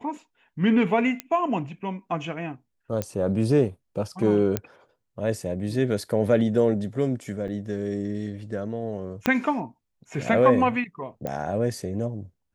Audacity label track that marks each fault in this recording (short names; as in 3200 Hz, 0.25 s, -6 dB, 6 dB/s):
1.200000	1.200000	pop -13 dBFS
3.020000	3.020000	pop -13 dBFS
4.570000	4.570000	pop -9 dBFS
7.480000	7.480000	gap 2.8 ms
9.260000	9.260000	pop -8 dBFS
11.270000	11.270000	pop -17 dBFS